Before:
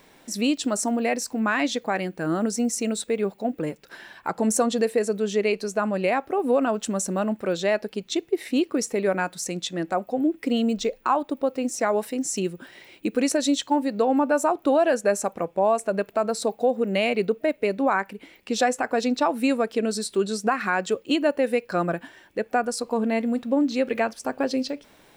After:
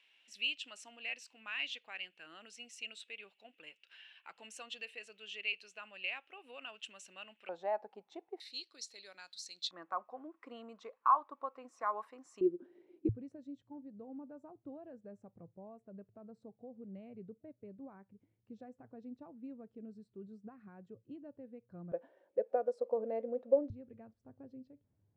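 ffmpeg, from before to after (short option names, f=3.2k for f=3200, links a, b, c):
-af "asetnsamples=n=441:p=0,asendcmd='7.49 bandpass f 820;8.4 bandpass f 4200;9.71 bandpass f 1100;12.41 bandpass f 350;13.09 bandpass f 110;21.92 bandpass f 530;23.7 bandpass f 100',bandpass=f=2.8k:t=q:w=7.9:csg=0"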